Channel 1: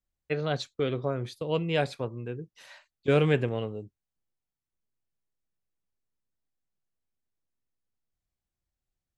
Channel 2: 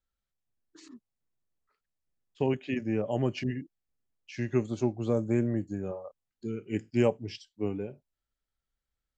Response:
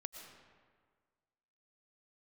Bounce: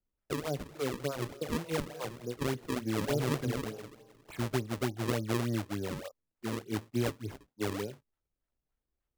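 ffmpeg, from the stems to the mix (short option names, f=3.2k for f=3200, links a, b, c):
-filter_complex "[0:a]highpass=150,highshelf=f=4.3k:g=-10,acrossover=split=610[a][b];[a]aeval=exprs='val(0)*(1-1/2+1/2*cos(2*PI*5.7*n/s))':c=same[c];[b]aeval=exprs='val(0)*(1-1/2-1/2*cos(2*PI*5.7*n/s))':c=same[d];[c][d]amix=inputs=2:normalize=0,volume=0.5dB,asplit=2[e][f];[f]volume=-5dB[g];[1:a]lowpass=f=2.6k:p=1,volume=0.5dB[h];[2:a]atrim=start_sample=2205[i];[g][i]afir=irnorm=-1:irlink=0[j];[e][h][j]amix=inputs=3:normalize=0,acrossover=split=120[k][l];[l]acompressor=threshold=-29dB:ratio=5[m];[k][m]amix=inputs=2:normalize=0,equalizer=f=180:t=o:w=0.34:g=-6,acrusher=samples=35:mix=1:aa=0.000001:lfo=1:lforange=56:lforate=3.4"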